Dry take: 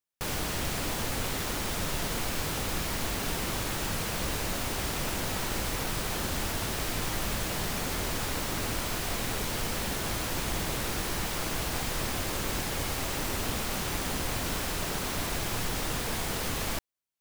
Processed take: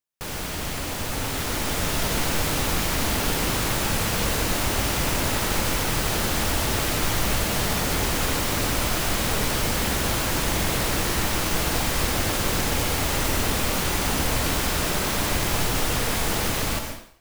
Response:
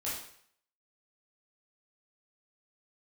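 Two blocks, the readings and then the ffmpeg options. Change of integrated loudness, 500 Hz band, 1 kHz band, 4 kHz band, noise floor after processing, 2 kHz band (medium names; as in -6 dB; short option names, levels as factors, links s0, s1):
+7.5 dB, +7.5 dB, +7.5 dB, +7.5 dB, -30 dBFS, +7.5 dB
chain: -filter_complex "[0:a]dynaudnorm=f=970:g=3:m=2.11,asplit=2[s0][s1];[1:a]atrim=start_sample=2205,adelay=98[s2];[s1][s2]afir=irnorm=-1:irlink=0,volume=0.422[s3];[s0][s3]amix=inputs=2:normalize=0"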